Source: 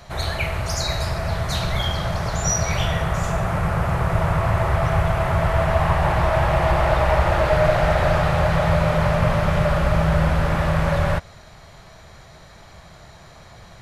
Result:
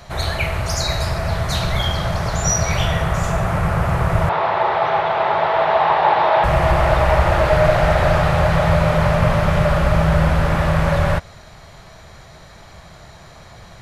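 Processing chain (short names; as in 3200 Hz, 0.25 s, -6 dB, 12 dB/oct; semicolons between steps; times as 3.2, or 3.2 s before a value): 4.29–6.44 speaker cabinet 360–4400 Hz, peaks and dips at 420 Hz +6 dB, 860 Hz +9 dB, 3700 Hz +7 dB; gain +3 dB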